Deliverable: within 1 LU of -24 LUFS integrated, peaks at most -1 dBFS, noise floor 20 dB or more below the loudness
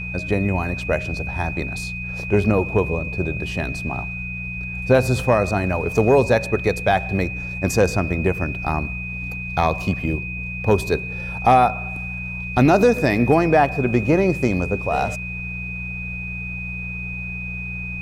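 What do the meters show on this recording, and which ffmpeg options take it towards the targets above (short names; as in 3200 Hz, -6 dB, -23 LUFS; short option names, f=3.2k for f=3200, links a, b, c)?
hum 60 Hz; harmonics up to 180 Hz; hum level -29 dBFS; steady tone 2500 Hz; tone level -29 dBFS; loudness -21.0 LUFS; peak -4.0 dBFS; loudness target -24.0 LUFS
-> -af "bandreject=f=60:t=h:w=4,bandreject=f=120:t=h:w=4,bandreject=f=180:t=h:w=4"
-af "bandreject=f=2.5k:w=30"
-af "volume=-3dB"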